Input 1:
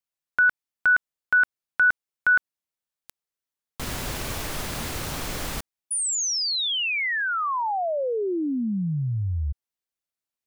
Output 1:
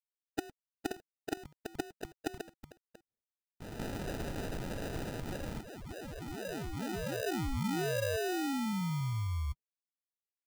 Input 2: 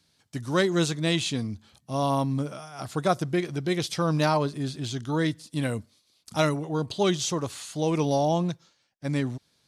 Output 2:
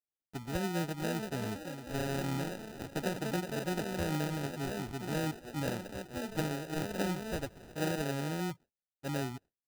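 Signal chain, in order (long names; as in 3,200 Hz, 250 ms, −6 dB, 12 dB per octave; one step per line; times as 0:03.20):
spectral magnitudes quantised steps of 30 dB
noise gate with hold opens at −45 dBFS, closes at −52 dBFS, hold 52 ms, range −33 dB
treble cut that deepens with the level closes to 370 Hz, closed at −20 dBFS
delay with pitch and tempo change per echo 606 ms, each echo +4 semitones, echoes 3, each echo −6 dB
sample-rate reduction 1,100 Hz, jitter 0%
level −7.5 dB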